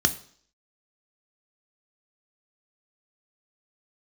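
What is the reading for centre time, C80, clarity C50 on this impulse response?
6 ms, 19.5 dB, 16.0 dB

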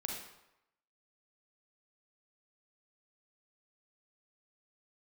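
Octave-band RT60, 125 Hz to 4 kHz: 0.75, 0.75, 0.85, 0.90, 0.80, 0.70 s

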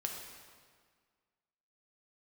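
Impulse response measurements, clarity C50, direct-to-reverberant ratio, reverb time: 3.0 dB, 1.0 dB, 1.7 s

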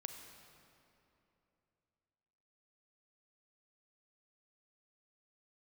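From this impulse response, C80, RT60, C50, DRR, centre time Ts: 6.5 dB, 3.0 s, 5.5 dB, 5.0 dB, 53 ms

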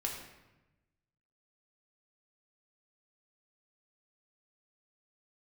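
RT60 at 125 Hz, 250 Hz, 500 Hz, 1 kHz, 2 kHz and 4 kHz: 1.5, 1.3, 1.1, 1.0, 0.95, 0.75 s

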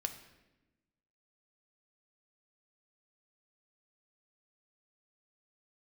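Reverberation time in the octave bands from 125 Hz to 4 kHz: 1.5, 1.5, 1.2, 0.90, 0.95, 0.80 s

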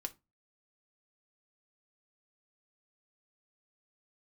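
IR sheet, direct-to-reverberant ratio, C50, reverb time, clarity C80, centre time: 5.0 dB, 21.0 dB, 0.25 s, 30.0 dB, 4 ms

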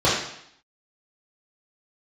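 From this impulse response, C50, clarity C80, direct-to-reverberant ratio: 2.0 dB, 5.5 dB, -9.0 dB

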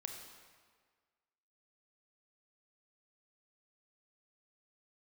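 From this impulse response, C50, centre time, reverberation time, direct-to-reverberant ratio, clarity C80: 4.0 dB, 49 ms, 1.6 s, 3.0 dB, 5.5 dB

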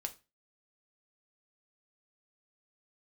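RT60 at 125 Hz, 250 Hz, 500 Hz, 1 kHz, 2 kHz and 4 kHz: 0.35, 0.30, 0.30, 0.30, 0.30, 0.25 s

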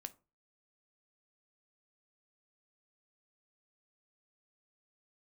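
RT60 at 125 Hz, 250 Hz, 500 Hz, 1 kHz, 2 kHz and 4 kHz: 0.40, 0.35, 0.35, 0.30, 0.25, 0.20 s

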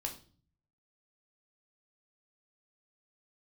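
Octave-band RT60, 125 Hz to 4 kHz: 0.90, 0.70, 0.45, 0.35, 0.35, 0.40 s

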